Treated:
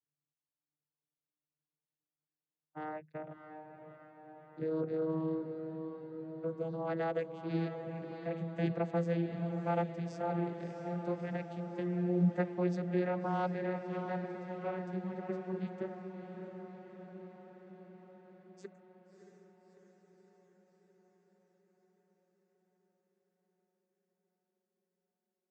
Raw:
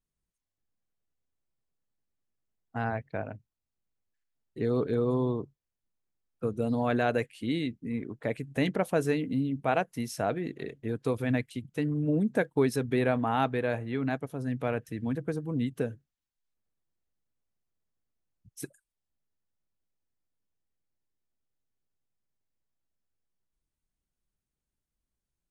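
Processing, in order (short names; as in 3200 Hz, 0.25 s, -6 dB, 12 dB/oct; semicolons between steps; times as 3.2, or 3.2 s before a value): vocoder on a gliding note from D3, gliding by +7 st; low shelf 230 Hz -8.5 dB; diffused feedback echo 0.644 s, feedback 66%, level -8 dB; gain -2.5 dB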